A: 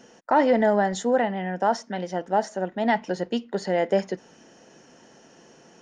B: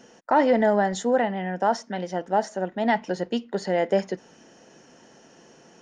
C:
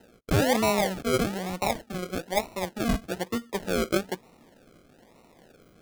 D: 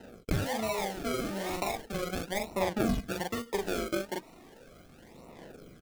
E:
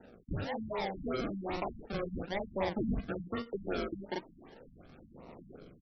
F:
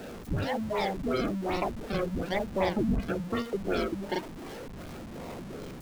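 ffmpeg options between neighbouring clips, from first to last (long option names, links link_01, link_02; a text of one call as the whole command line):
ffmpeg -i in.wav -af anull out.wav
ffmpeg -i in.wav -af "acrusher=samples=38:mix=1:aa=0.000001:lfo=1:lforange=22.8:lforate=1.1,volume=-3.5dB" out.wav
ffmpeg -i in.wav -filter_complex "[0:a]asplit=2[link_01][link_02];[link_02]adelay=41,volume=-2dB[link_03];[link_01][link_03]amix=inputs=2:normalize=0,acompressor=threshold=-29dB:ratio=12,aphaser=in_gain=1:out_gain=1:delay=3.3:decay=0.44:speed=0.37:type=sinusoidal" out.wav
ffmpeg -i in.wav -af "dynaudnorm=framelen=350:gausssize=3:maxgain=6dB,asoftclip=type=tanh:threshold=-19dB,afftfilt=real='re*lt(b*sr/1024,250*pow(6000/250,0.5+0.5*sin(2*PI*2.7*pts/sr)))':imag='im*lt(b*sr/1024,250*pow(6000/250,0.5+0.5*sin(2*PI*2.7*pts/sr)))':win_size=1024:overlap=0.75,volume=-6.5dB" out.wav
ffmpeg -i in.wav -af "aeval=exprs='val(0)+0.5*0.00668*sgn(val(0))':channel_layout=same,volume=5dB" out.wav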